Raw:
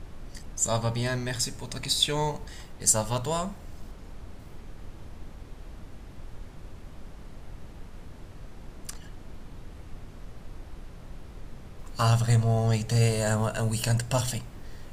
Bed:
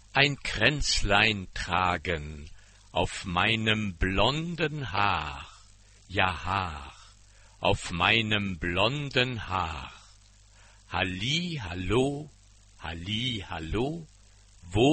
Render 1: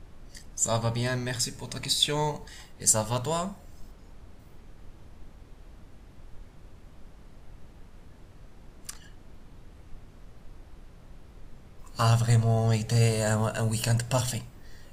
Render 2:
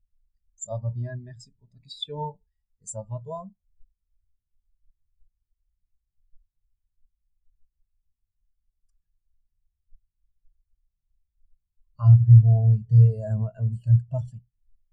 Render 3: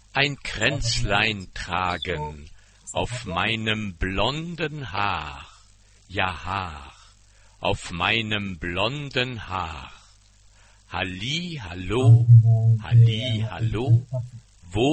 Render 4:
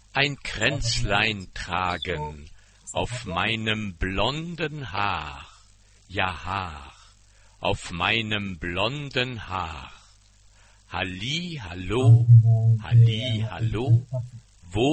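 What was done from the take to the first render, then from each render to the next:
noise print and reduce 6 dB
in parallel at +2 dB: limiter -17 dBFS, peak gain reduction 9 dB; on the sum: spectral expander 2.5:1
add bed +1 dB
gain -1 dB

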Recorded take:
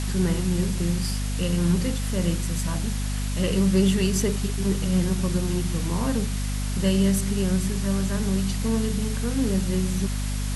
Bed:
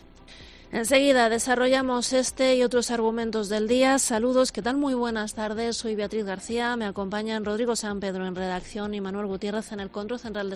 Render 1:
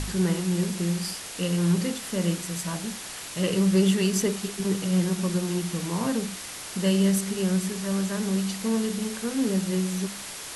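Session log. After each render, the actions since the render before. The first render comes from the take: de-hum 50 Hz, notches 5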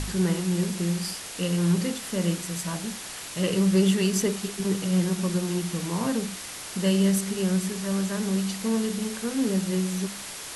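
nothing audible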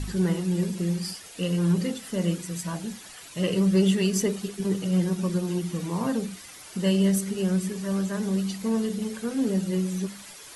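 denoiser 11 dB, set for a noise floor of -38 dBFS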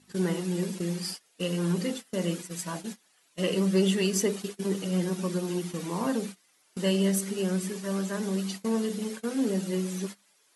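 HPF 220 Hz 12 dB/oct; gate -36 dBFS, range -21 dB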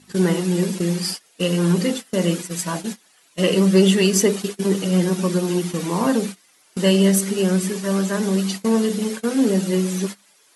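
gain +9.5 dB

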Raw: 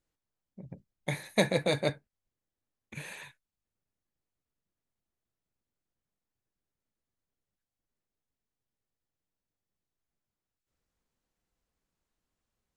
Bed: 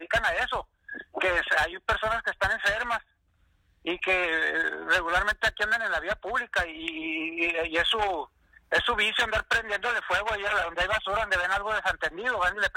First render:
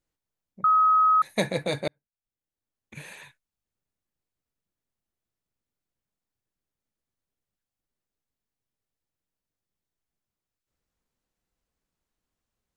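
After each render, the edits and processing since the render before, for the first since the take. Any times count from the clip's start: 0.64–1.22 bleep 1270 Hz -16 dBFS; 1.88–2.97 fade in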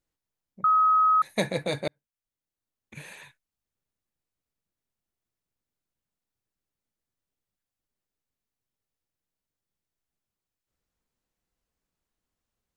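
gain -1 dB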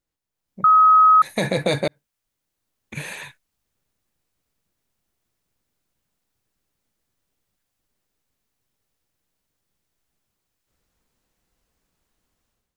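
limiter -20.5 dBFS, peak gain reduction 11 dB; AGC gain up to 11.5 dB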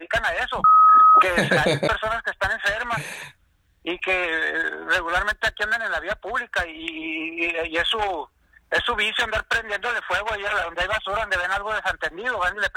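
add bed +2.5 dB

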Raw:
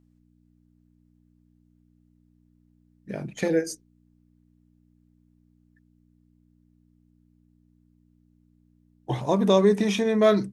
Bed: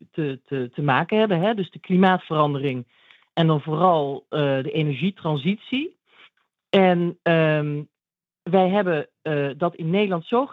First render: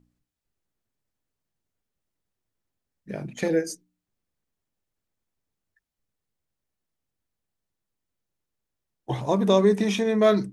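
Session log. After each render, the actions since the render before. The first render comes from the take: de-hum 60 Hz, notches 5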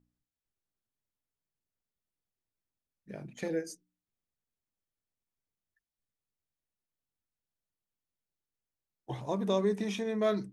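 gain -10 dB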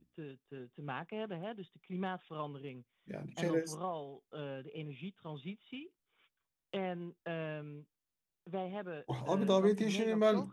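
add bed -22 dB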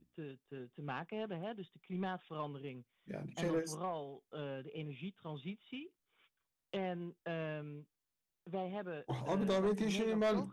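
soft clip -28 dBFS, distortion -12 dB

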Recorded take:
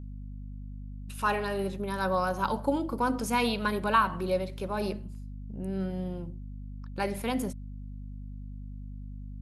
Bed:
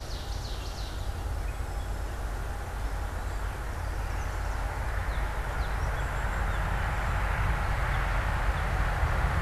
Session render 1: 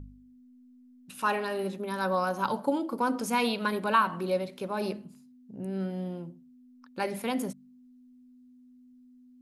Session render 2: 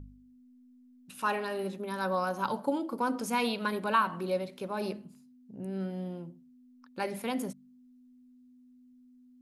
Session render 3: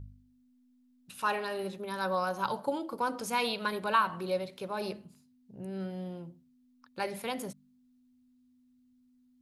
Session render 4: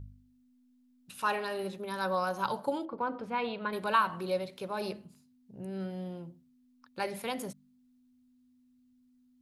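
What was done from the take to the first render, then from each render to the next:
de-hum 50 Hz, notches 4
gain -2.5 dB
fifteen-band EQ 100 Hz +6 dB, 250 Hz -8 dB, 4000 Hz +3 dB
2.85–3.73 air absorption 430 m

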